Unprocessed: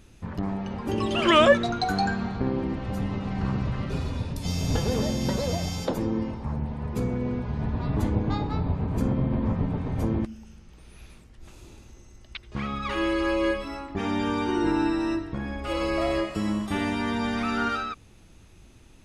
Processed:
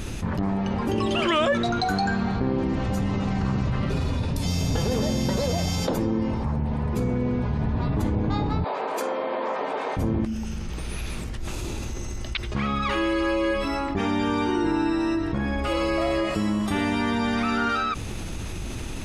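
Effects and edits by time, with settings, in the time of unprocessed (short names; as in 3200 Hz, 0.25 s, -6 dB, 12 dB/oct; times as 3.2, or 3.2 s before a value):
2.58–3.7 bell 6800 Hz +6.5 dB
8.64–9.97 HPF 480 Hz 24 dB/oct
whole clip: fast leveller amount 70%; gain -7 dB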